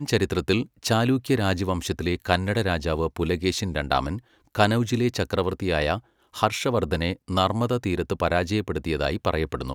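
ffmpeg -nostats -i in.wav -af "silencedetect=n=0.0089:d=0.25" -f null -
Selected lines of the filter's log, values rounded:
silence_start: 4.19
silence_end: 4.55 | silence_duration: 0.36
silence_start: 5.99
silence_end: 6.34 | silence_duration: 0.35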